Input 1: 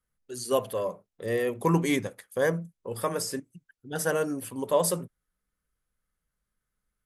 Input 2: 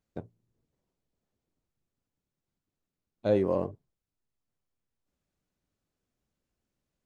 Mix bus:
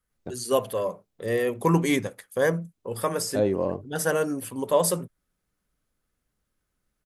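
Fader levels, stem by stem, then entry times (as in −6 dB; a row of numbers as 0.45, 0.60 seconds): +2.5, +1.5 decibels; 0.00, 0.10 seconds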